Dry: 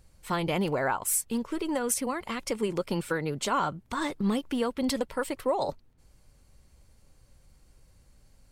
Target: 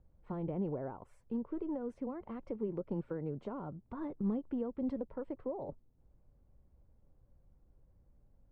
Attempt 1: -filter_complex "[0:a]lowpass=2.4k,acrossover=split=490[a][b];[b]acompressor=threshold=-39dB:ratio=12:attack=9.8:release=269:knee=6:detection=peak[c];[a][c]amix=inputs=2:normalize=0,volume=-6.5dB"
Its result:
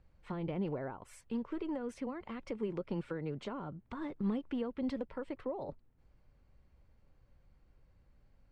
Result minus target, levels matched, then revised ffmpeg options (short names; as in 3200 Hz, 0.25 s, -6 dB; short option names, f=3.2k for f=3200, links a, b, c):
2000 Hz band +9.5 dB
-filter_complex "[0:a]lowpass=760,acrossover=split=490[a][b];[b]acompressor=threshold=-39dB:ratio=12:attack=9.8:release=269:knee=6:detection=peak[c];[a][c]amix=inputs=2:normalize=0,volume=-6.5dB"